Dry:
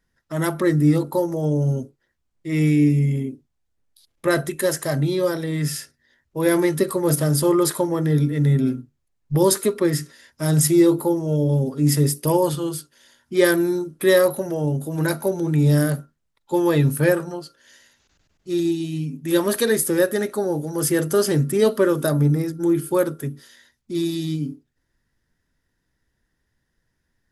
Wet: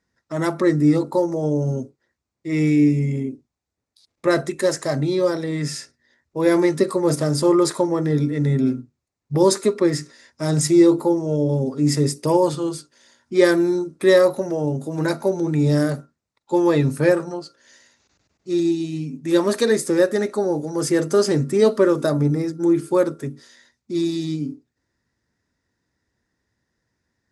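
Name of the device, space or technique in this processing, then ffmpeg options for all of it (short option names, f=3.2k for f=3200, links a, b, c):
car door speaker: -af "highpass=84,equalizer=f=150:t=q:w=4:g=-5,equalizer=f=1.6k:t=q:w=4:g=-4,equalizer=f=3.1k:t=q:w=4:g=-8,lowpass=f=8k:w=0.5412,lowpass=f=8k:w=1.3066,volume=2dB"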